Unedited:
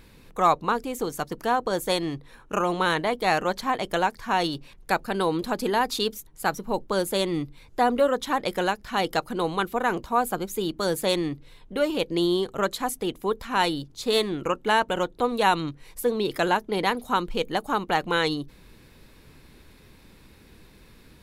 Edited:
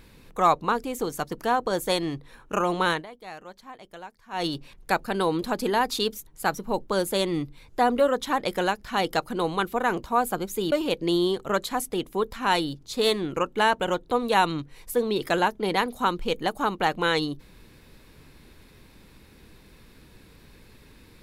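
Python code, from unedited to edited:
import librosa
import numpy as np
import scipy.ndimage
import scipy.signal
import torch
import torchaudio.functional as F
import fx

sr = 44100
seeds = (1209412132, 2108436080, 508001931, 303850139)

y = fx.edit(x, sr, fx.fade_down_up(start_s=2.9, length_s=1.57, db=-18.0, fade_s=0.16),
    fx.cut(start_s=10.72, length_s=1.09), tone=tone)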